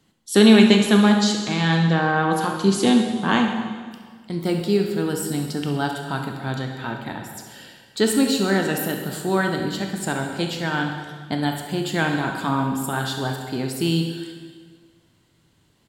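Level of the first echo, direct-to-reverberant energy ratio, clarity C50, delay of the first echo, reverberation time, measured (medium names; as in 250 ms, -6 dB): -11.0 dB, 2.5 dB, 4.0 dB, 68 ms, 1.6 s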